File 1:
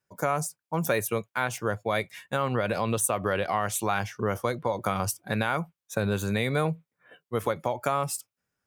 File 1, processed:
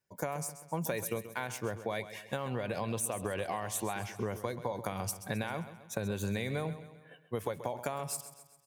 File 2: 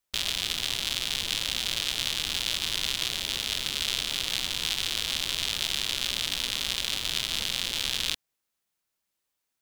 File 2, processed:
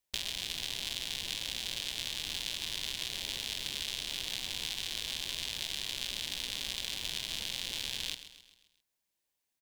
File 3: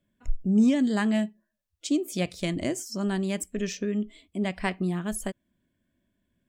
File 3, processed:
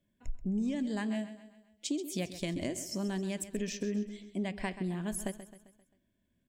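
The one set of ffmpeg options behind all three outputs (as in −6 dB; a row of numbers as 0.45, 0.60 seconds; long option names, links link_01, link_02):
-af "acompressor=threshold=-28dB:ratio=6,equalizer=frequency=1300:width=5.2:gain=-9.5,aecho=1:1:132|264|396|528|660:0.224|0.11|0.0538|0.0263|0.0129,volume=-2.5dB"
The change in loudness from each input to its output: −8.0, −8.0, −8.0 LU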